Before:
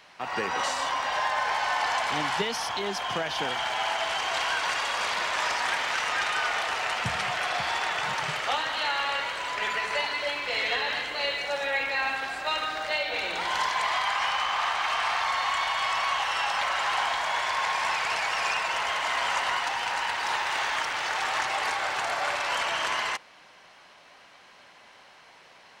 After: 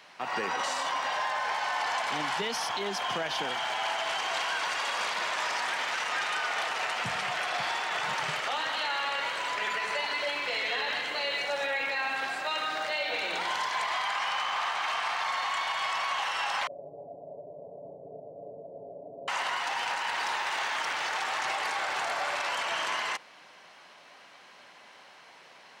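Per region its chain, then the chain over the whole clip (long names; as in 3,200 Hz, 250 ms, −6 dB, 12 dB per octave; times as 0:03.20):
0:16.67–0:19.28: Chebyshev low-pass with heavy ripple 650 Hz, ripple 3 dB + comb filter 7.1 ms, depth 76%
whole clip: high-pass filter 140 Hz 12 dB per octave; brickwall limiter −22 dBFS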